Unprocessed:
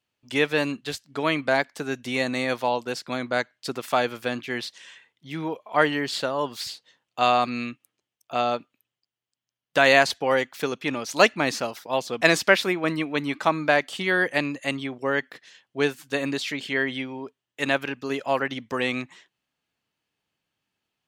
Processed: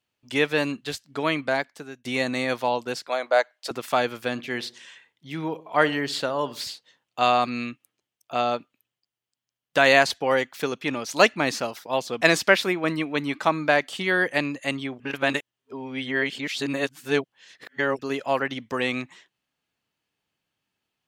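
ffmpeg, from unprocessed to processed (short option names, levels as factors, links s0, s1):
-filter_complex "[0:a]asettb=1/sr,asplit=3[s0][s1][s2];[s0]atrim=end=3.084[s3];[s1]atrim=start=3.08:end=3.71,asetpts=PTS-STARTPTS,afade=t=in:d=0.004:c=qsin,afade=t=out:st=0.626:d=0.004:c=qsin,highpass=f=620:t=q:w=2.5[s4];[s2]atrim=start=3.706[s5];[s3][s4]acrossfade=d=0.004:c1=hsin:c2=qsin[s6];[s6][s5]acrossfade=d=0.004:c1=qsin:c2=hsin,asettb=1/sr,asplit=3[s7][s8][s9];[s7]atrim=end=4.314[s10];[s8]atrim=start=4.31:end=6.71,asetpts=PTS-STARTPTS,afade=t=in:d=0.004:c=qsin,afade=t=out:st=2.396:d=0.004:c=qsin,asplit=2[s11][s12];[s12]adelay=63,lowpass=f=1000:p=1,volume=0.15,asplit=2[s13][s14];[s14]adelay=63,lowpass=f=1000:p=1,volume=0.48,asplit=2[s15][s16];[s16]adelay=63,lowpass=f=1000:p=1,volume=0.48,asplit=2[s17][s18];[s18]adelay=63,lowpass=f=1000:p=1,volume=0.48[s19];[s11][s13][s15][s17][s19]amix=inputs=5:normalize=0,atrim=end_sample=105840[s20];[s9]atrim=start=6.706[s21];[s10][s20]acrossfade=d=0.004:c1=hsin:c2=qsin[s22];[s22][s21]acrossfade=d=0.004:c1=qsin:c2=hsin,asplit=4[s23][s24][s25][s26];[s23]atrim=end=2.05,asetpts=PTS-STARTPTS,afade=t=out:st=1.05:d=1:c=qsin:silence=0.0891251[s27];[s24]atrim=start=2.05:end=15.002,asetpts=PTS-STARTPTS,afade=t=in:d=0.004:c=hsin:silence=0.0891251[s28];[s25]atrim=start=14.998:end=17.992,asetpts=PTS-STARTPTS,areverse[s29];[s26]atrim=start=17.988[s30];[s27][s28]concat=n=2:v=0:a=1[s31];[s31][s29]acrossfade=d=0.004:c1=hsin:c2=hsin[s32];[s32][s30]acrossfade=d=0.004:c1=hsin:c2=hsin"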